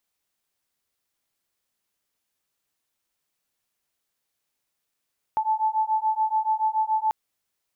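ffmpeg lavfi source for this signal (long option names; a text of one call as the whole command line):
ffmpeg -f lavfi -i "aevalsrc='0.0631*(sin(2*PI*869*t)+sin(2*PI*876*t))':duration=1.74:sample_rate=44100" out.wav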